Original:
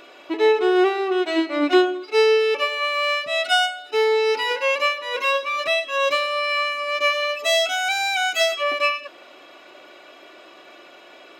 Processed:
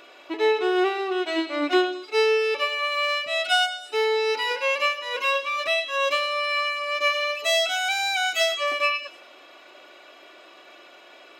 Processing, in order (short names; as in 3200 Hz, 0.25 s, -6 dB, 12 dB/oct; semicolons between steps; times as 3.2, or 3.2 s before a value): low shelf 320 Hz -7 dB; delay with a stepping band-pass 0.101 s, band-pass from 3500 Hz, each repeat 0.7 oct, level -9 dB; gain -2 dB